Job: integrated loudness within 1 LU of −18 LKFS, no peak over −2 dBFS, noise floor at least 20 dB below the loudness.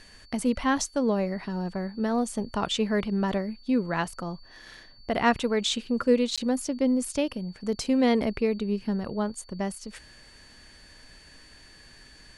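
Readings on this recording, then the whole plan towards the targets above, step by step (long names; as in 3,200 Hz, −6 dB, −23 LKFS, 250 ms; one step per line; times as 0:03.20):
number of dropouts 1; longest dropout 16 ms; interfering tone 4,500 Hz; level of the tone −54 dBFS; integrated loudness −27.5 LKFS; sample peak −10.0 dBFS; target loudness −18.0 LKFS
→ repair the gap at 0:06.36, 16 ms
notch filter 4,500 Hz, Q 30
level +9.5 dB
brickwall limiter −2 dBFS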